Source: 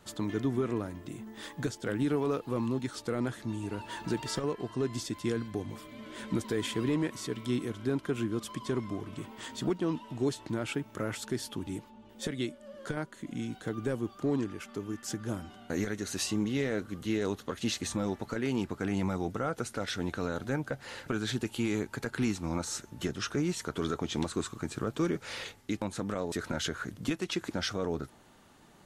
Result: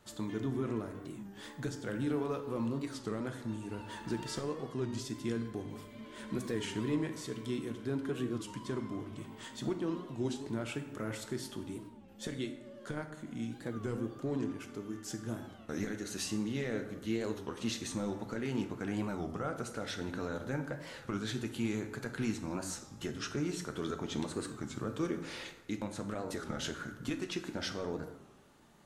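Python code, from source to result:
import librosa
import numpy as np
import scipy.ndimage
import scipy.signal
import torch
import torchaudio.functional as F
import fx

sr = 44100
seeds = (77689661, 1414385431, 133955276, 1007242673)

y = fx.rev_plate(x, sr, seeds[0], rt60_s=1.1, hf_ratio=0.55, predelay_ms=0, drr_db=6.0)
y = fx.record_warp(y, sr, rpm=33.33, depth_cents=160.0)
y = y * librosa.db_to_amplitude(-5.5)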